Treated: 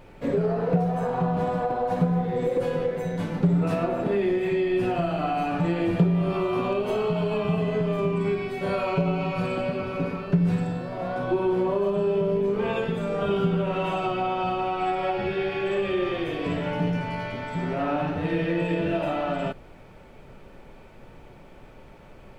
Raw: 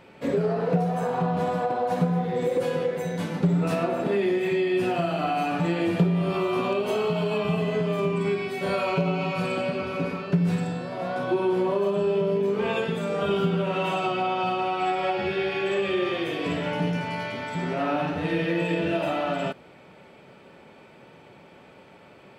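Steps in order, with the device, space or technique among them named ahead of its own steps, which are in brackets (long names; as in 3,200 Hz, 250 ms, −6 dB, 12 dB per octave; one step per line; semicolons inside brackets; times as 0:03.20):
car interior (parametric band 110 Hz +6.5 dB 0.57 octaves; high-shelf EQ 2,700 Hz −7 dB; brown noise bed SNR 23 dB)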